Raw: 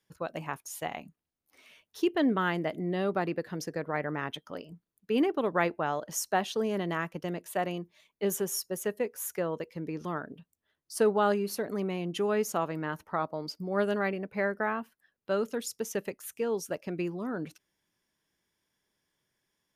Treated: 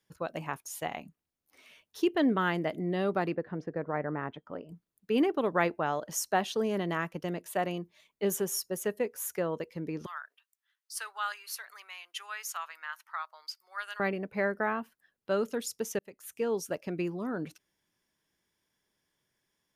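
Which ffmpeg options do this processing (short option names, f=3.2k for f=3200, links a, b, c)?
-filter_complex "[0:a]asettb=1/sr,asplit=3[a][b][c];[a]atrim=end=3.354[d];[b]atrim=start=3.35:end=4.69,asetpts=PTS-STARTPTS,afade=t=in:d=0.004:c=qsin,afade=t=out:st=1.336:d=0.004:c=qsin,lowpass=1.5k[e];[c]atrim=start=4.686[f];[d][e]acrossfade=d=0.004:c1=hsin:c2=qsin[g];[g][f]acrossfade=d=0.004:c1=qsin:c2=hsin,asettb=1/sr,asplit=3[h][i][j];[h]atrim=end=10.064[k];[i]atrim=start=10.06:end=14,asetpts=PTS-STARTPTS,afade=t=in:d=0.004:c=qsin,afade=t=out:st=3.936:d=0.004:c=qsin,highpass=f=1.2k:w=0.5412,highpass=f=1.2k:w=1.3066[l];[j]atrim=start=13.996[m];[k][l]acrossfade=d=0.004:c1=hsin:c2=qsin[n];[n][m]acrossfade=d=0.004:c1=qsin:c2=hsin,asplit=2[o][p];[o]atrim=end=15.99,asetpts=PTS-STARTPTS,afade=t=out:st=15.986:d=0.004:c=hsin[q];[p]atrim=start=15.99,asetpts=PTS-STARTPTS,afade=t=in:d=0.43[r];[q][r]concat=n=2:v=0:a=1"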